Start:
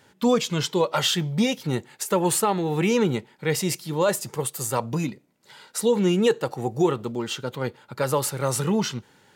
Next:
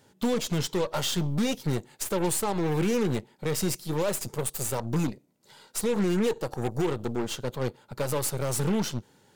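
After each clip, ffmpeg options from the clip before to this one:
-af "equalizer=f=1.9k:w=0.64:g=-7.5,alimiter=limit=-17.5dB:level=0:latency=1:release=111,aeval=exprs='0.133*(cos(1*acos(clip(val(0)/0.133,-1,1)))-cos(1*PI/2))+0.0168*(cos(8*acos(clip(val(0)/0.133,-1,1)))-cos(8*PI/2))':c=same,volume=-1dB"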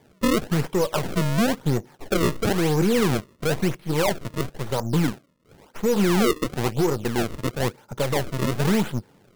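-af "lowpass=2.3k,acrusher=samples=32:mix=1:aa=0.000001:lfo=1:lforange=51.2:lforate=0.98,volume=5.5dB"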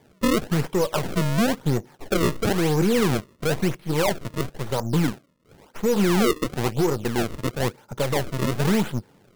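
-af anull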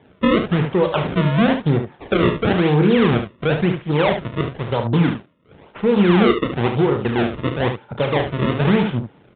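-filter_complex "[0:a]highpass=47,asplit=2[a][b];[b]aecho=0:1:34|72:0.376|0.376[c];[a][c]amix=inputs=2:normalize=0,aresample=8000,aresample=44100,volume=4.5dB"

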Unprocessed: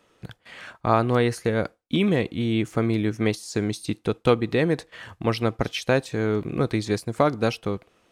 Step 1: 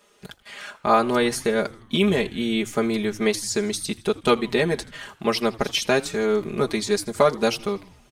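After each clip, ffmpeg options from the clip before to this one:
-filter_complex "[0:a]bass=f=250:g=-7,treble=f=4k:g=7,aecho=1:1:4.9:0.98,asplit=6[a][b][c][d][e][f];[b]adelay=81,afreqshift=-110,volume=-21dB[g];[c]adelay=162,afreqshift=-220,volume=-25.2dB[h];[d]adelay=243,afreqshift=-330,volume=-29.3dB[i];[e]adelay=324,afreqshift=-440,volume=-33.5dB[j];[f]adelay=405,afreqshift=-550,volume=-37.6dB[k];[a][g][h][i][j][k]amix=inputs=6:normalize=0"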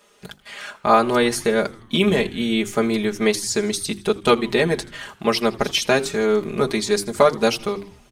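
-af "bandreject=f=50:t=h:w=6,bandreject=f=100:t=h:w=6,bandreject=f=150:t=h:w=6,bandreject=f=200:t=h:w=6,bandreject=f=250:t=h:w=6,bandreject=f=300:t=h:w=6,bandreject=f=350:t=h:w=6,bandreject=f=400:t=h:w=6,volume=3dB"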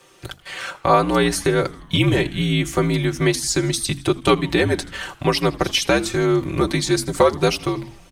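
-filter_complex "[0:a]asplit=2[a][b];[b]acompressor=threshold=-25dB:ratio=6,volume=1dB[c];[a][c]amix=inputs=2:normalize=0,afreqshift=-65,volume=-2dB"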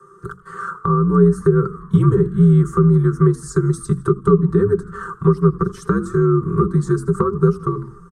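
-filter_complex "[0:a]firequalizer=gain_entry='entry(110,0);entry(180,13);entry(280,-13);entry(410,14);entry(620,-28);entry(1200,15);entry(2300,-30);entry(8300,-7);entry(13000,-19)':delay=0.05:min_phase=1,acrossover=split=340[a][b];[b]acompressor=threshold=-22dB:ratio=6[c];[a][c]amix=inputs=2:normalize=0"

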